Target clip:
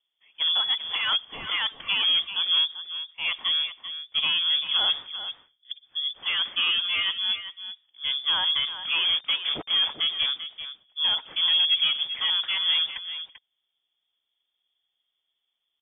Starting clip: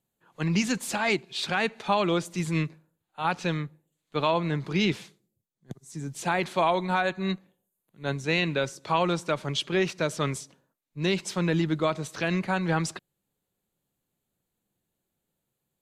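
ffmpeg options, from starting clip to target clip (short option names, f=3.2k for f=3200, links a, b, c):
-filter_complex "[0:a]equalizer=f=310:t=o:w=0.46:g=13,asettb=1/sr,asplit=3[a][b][c];[a]atrim=end=9.044[d];[b]atrim=start=9.04:end=9.9,asetpts=PTS-STARTPTS,afade=t=in:d=0.004:c=qsin,afade=t=out:st=0.856:d=0.004:c=qsin,acrusher=bits=4:mix=0:aa=0.5[e];[c]atrim=start=9.896[f];[d][e]acrossfade=d=0.004:c1=hsin:c2=qsin[g];[g][f]acrossfade=d=0.004:c1=qsin:c2=hsin,asoftclip=type=tanh:threshold=-17.5dB,aecho=1:1:391:0.282,lowpass=f=3.1k:t=q:w=0.5098,lowpass=f=3.1k:t=q:w=0.6013,lowpass=f=3.1k:t=q:w=0.9,lowpass=f=3.1k:t=q:w=2.563,afreqshift=-3600"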